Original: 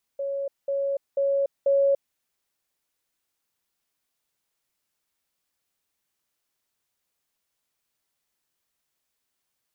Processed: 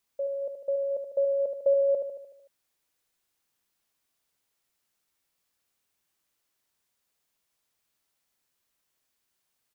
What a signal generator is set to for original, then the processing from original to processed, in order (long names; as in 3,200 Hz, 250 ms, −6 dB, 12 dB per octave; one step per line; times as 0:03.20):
level staircase 555 Hz −26 dBFS, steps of 3 dB, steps 4, 0.29 s 0.20 s
repeating echo 75 ms, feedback 56%, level −7 dB